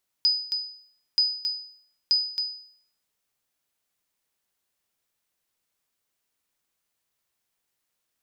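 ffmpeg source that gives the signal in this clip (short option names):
-f lavfi -i "aevalsrc='0.188*(sin(2*PI*4980*mod(t,0.93))*exp(-6.91*mod(t,0.93)/0.59)+0.501*sin(2*PI*4980*max(mod(t,0.93)-0.27,0))*exp(-6.91*max(mod(t,0.93)-0.27,0)/0.59))':d=2.79:s=44100"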